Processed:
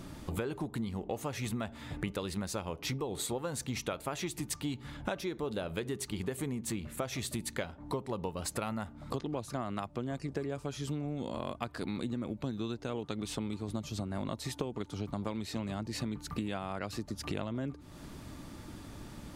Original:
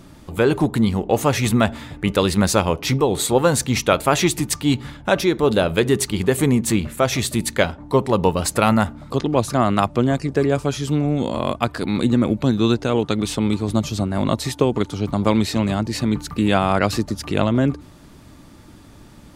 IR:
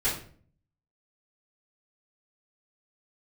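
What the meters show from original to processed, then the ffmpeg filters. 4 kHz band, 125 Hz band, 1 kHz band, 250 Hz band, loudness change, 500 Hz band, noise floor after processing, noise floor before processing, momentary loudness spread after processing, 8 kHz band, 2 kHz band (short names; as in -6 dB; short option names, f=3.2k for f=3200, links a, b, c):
-16.5 dB, -17.0 dB, -19.0 dB, -18.0 dB, -18.0 dB, -19.0 dB, -51 dBFS, -44 dBFS, 4 LU, -15.5 dB, -18.0 dB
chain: -af "acompressor=threshold=-31dB:ratio=10,volume=-2dB"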